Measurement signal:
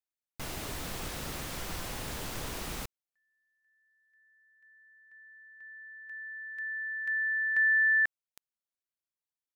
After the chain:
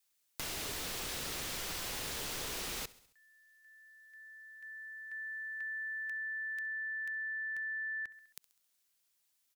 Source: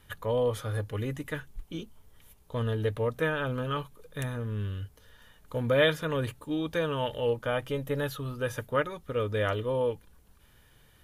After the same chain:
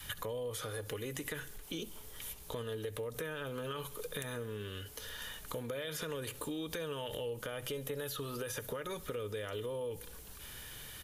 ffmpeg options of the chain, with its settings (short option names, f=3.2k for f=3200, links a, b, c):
-filter_complex "[0:a]highshelf=f=2k:g=11.5,acompressor=threshold=-40dB:ratio=6:attack=2.6:release=54:detection=rms,asplit=2[a][b];[b]aecho=0:1:67|134|201|268:0.0841|0.0471|0.0264|0.0148[c];[a][c]amix=inputs=2:normalize=0,adynamicequalizer=threshold=0.001:dfrequency=430:dqfactor=2.4:tfrequency=430:tqfactor=2.4:attack=5:release=100:ratio=0.375:range=3.5:mode=boostabove:tftype=bell,acrossover=split=240|6000[d][e][f];[d]acompressor=threshold=-55dB:ratio=4[g];[e]acompressor=threshold=-46dB:ratio=4[h];[f]acompressor=threshold=-50dB:ratio=4[i];[g][h][i]amix=inputs=3:normalize=0,volume=7dB"